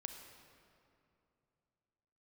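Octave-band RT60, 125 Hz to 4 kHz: 3.3 s, 3.1 s, 2.8 s, 2.6 s, 2.1 s, 1.6 s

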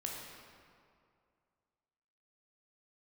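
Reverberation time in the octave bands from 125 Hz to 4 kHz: 2.4 s, 2.3 s, 2.3 s, 2.3 s, 1.8 s, 1.4 s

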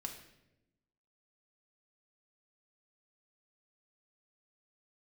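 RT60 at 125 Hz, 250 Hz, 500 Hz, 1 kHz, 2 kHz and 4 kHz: 1.3 s, 1.3 s, 1.1 s, 0.75 s, 0.80 s, 0.70 s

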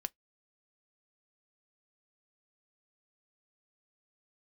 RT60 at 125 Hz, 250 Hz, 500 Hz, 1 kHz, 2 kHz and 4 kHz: 0.10 s, 0.15 s, 0.15 s, 0.10 s, 0.10 s, 0.10 s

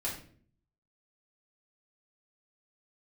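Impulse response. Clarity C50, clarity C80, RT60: 6.0 dB, 10.5 dB, 0.50 s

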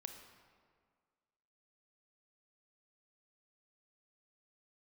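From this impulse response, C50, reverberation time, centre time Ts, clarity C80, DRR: 6.0 dB, 1.9 s, 35 ms, 7.5 dB, 5.0 dB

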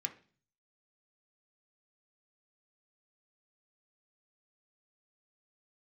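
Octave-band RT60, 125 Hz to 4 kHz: 0.80 s, 0.55 s, 0.45 s, 0.40 s, 0.40 s, 0.45 s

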